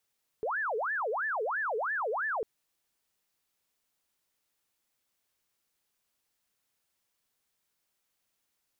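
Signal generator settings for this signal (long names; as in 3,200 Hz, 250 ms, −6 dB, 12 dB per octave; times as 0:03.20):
siren wail 422–1,770 Hz 3 per second sine −29 dBFS 2.00 s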